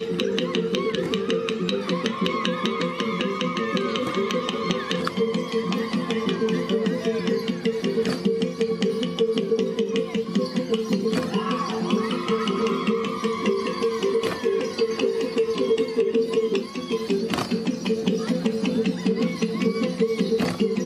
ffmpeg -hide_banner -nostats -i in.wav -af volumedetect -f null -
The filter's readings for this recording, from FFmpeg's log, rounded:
mean_volume: -24.0 dB
max_volume: -5.4 dB